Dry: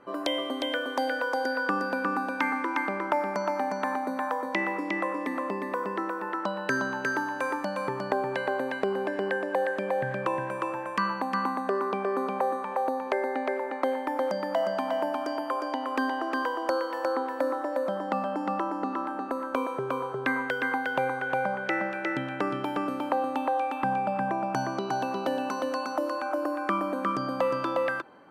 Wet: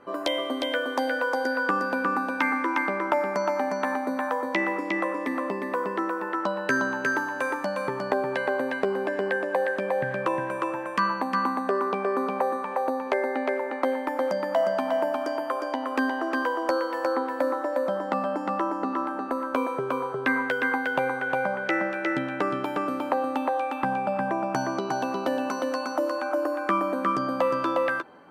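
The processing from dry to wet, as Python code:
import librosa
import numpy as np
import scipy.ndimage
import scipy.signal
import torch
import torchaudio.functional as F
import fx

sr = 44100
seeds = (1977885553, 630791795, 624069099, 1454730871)

y = fx.doubler(x, sr, ms=12.0, db=-9.5)
y = F.gain(torch.from_numpy(y), 2.0).numpy()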